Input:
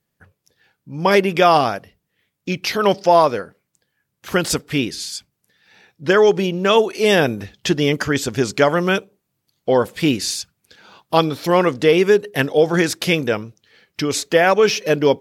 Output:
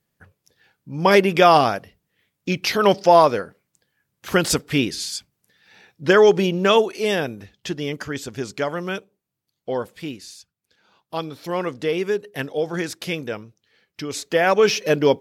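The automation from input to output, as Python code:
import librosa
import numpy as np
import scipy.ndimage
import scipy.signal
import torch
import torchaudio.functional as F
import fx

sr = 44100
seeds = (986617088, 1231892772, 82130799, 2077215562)

y = fx.gain(x, sr, db=fx.line((6.64, 0.0), (7.3, -9.5), (9.79, -9.5), (10.3, -18.0), (11.68, -9.0), (14.06, -9.0), (14.59, -1.5)))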